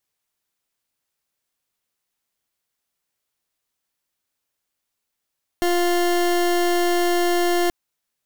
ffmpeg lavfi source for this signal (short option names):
-f lavfi -i "aevalsrc='0.112*(2*lt(mod(350*t,1),0.28)-1)':d=2.08:s=44100"